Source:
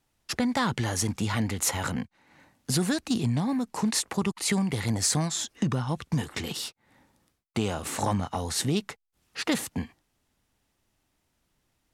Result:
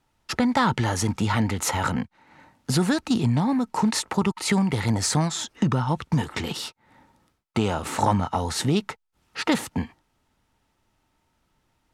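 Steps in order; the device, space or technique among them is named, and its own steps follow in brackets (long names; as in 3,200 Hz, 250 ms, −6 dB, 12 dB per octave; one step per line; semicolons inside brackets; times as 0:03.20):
inside a helmet (high-shelf EQ 5,900 Hz −8.5 dB; hollow resonant body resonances 910/1,300 Hz, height 9 dB)
level +4.5 dB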